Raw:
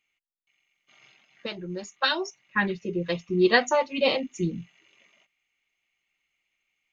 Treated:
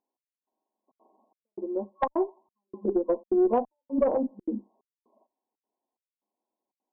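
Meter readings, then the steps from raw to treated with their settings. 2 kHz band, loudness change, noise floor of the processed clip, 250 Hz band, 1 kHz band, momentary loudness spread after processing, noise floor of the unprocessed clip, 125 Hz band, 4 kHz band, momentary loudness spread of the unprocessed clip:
under -20 dB, -2.5 dB, under -85 dBFS, 0.0 dB, -3.0 dB, 11 LU, -80 dBFS, under -15 dB, under -30 dB, 16 LU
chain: FFT band-pass 200–1100 Hz; compressor 8:1, threshold -25 dBFS, peak gain reduction 10 dB; thinning echo 85 ms, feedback 50%, high-pass 740 Hz, level -23 dB; step gate "xx...xxxxxx.xx" 181 bpm -60 dB; added harmonics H 2 -9 dB, 4 -22 dB, 5 -36 dB, 6 -44 dB, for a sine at -17 dBFS; gain +5.5 dB

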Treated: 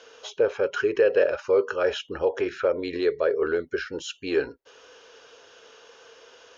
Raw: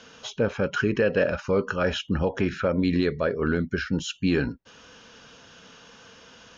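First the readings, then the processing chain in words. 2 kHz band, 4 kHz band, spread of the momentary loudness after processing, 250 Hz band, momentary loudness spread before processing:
-2.0 dB, -2.5 dB, 10 LU, -8.0 dB, 5 LU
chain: resonant low shelf 290 Hz -12 dB, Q 3; gain -2.5 dB

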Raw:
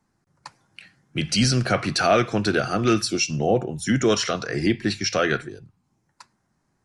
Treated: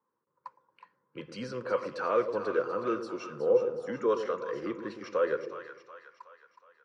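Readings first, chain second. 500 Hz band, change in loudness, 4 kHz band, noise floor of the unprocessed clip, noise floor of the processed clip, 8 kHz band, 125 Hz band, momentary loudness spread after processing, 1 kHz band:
-4.5 dB, -9.0 dB, -24.5 dB, -72 dBFS, -81 dBFS, under -25 dB, -24.0 dB, 17 LU, -9.0 dB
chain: double band-pass 710 Hz, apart 1 oct; split-band echo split 690 Hz, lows 0.113 s, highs 0.368 s, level -9 dB; gain +1 dB

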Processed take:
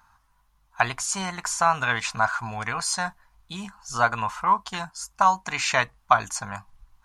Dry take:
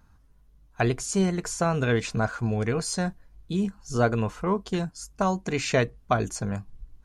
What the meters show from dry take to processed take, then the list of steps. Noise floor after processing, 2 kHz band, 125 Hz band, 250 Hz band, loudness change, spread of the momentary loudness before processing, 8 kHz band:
-66 dBFS, +7.0 dB, -9.5 dB, -11.0 dB, +2.5 dB, 6 LU, +4.5 dB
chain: resonant low shelf 630 Hz -13.5 dB, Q 3; gain +4.5 dB

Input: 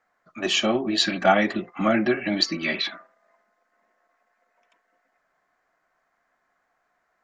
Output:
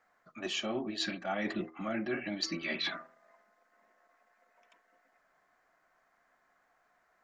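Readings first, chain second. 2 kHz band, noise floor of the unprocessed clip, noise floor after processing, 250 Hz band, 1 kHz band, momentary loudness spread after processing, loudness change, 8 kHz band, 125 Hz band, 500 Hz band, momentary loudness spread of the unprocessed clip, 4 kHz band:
-11.5 dB, -73 dBFS, -73 dBFS, -12.0 dB, -16.0 dB, 4 LU, -12.5 dB, -11.5 dB, -12.0 dB, -14.0 dB, 7 LU, -12.0 dB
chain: de-hum 80.41 Hz, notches 7; reverse; compressor 10:1, threshold -32 dBFS, peak gain reduction 19.5 dB; reverse

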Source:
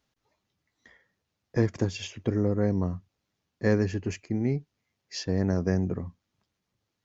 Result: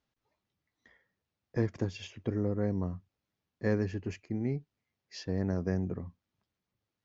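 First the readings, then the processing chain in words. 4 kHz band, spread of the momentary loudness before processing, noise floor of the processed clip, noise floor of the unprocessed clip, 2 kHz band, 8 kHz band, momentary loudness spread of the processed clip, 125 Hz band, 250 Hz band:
-8.5 dB, 10 LU, under -85 dBFS, -82 dBFS, -6.5 dB, n/a, 10 LU, -5.5 dB, -5.5 dB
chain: air absorption 83 m; gain -5.5 dB

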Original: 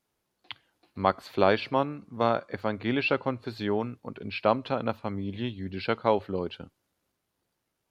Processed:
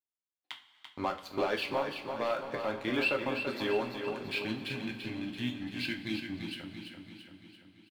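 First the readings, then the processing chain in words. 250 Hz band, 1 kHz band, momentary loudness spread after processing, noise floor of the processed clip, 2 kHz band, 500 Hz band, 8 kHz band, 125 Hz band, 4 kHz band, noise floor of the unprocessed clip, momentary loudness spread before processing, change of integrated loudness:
-4.5 dB, -8.5 dB, 17 LU, under -85 dBFS, -1.0 dB, -6.5 dB, n/a, -8.5 dB, 0.0 dB, -81 dBFS, 14 LU, -5.5 dB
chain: gate -45 dBFS, range -18 dB; reverb removal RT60 0.86 s; spectral delete 4.41–6.55, 360–1500 Hz; low shelf 190 Hz -11 dB; sample leveller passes 2; limiter -17 dBFS, peak gain reduction 8.5 dB; flange 0.64 Hz, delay 8.9 ms, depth 6.7 ms, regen -56%; on a send: feedback echo 0.338 s, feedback 55%, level -7 dB; on the sum: two-slope reverb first 0.33 s, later 4.3 s, from -18 dB, DRR 3.5 dB; gain -2.5 dB

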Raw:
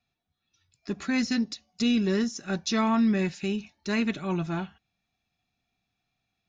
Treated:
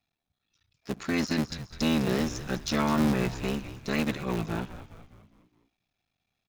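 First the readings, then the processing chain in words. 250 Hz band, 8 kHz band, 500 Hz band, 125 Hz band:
-2.5 dB, n/a, 0.0 dB, +2.5 dB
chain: cycle switcher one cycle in 3, muted; frequency-shifting echo 0.206 s, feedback 50%, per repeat -93 Hz, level -12.5 dB

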